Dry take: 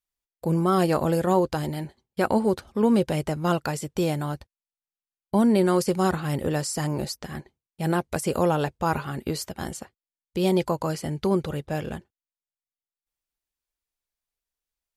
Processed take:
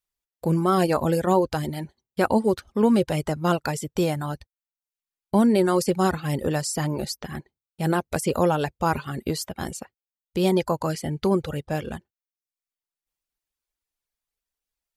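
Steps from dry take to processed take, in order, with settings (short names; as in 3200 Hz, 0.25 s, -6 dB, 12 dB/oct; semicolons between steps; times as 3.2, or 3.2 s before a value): reverb removal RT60 0.57 s; gain +2 dB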